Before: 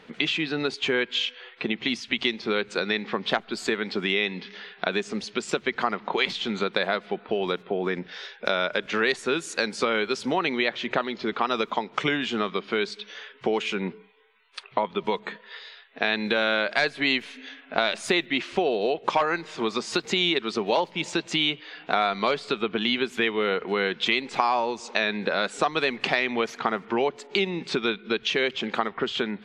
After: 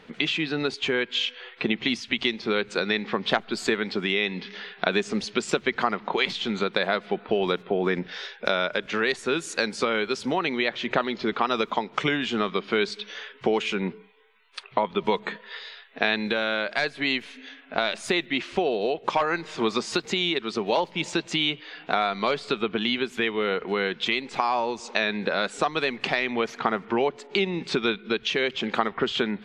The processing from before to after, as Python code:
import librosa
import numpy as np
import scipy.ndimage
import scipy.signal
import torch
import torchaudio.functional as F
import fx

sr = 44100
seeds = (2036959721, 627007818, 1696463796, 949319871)

y = fx.low_shelf(x, sr, hz=93.0, db=6.5)
y = fx.rider(y, sr, range_db=3, speed_s=0.5)
y = fx.high_shelf(y, sr, hz=5900.0, db=-5.5, at=(26.3, 27.54))